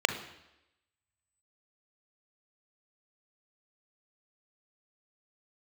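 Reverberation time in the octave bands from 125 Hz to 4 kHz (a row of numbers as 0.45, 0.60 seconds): 0.80, 0.90, 0.90, 0.90, 0.90, 0.90 seconds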